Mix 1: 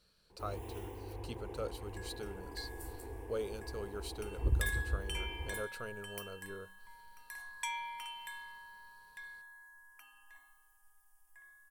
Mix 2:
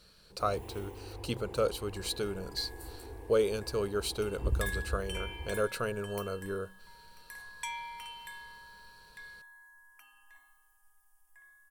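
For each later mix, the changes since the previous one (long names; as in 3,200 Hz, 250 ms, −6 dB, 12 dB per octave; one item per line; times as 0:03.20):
speech +11.0 dB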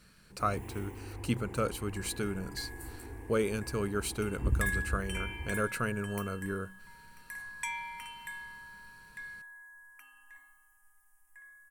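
master: add octave-band graphic EQ 125/250/500/2,000/4,000/8,000 Hz +4/+7/−7/+8/−9/+4 dB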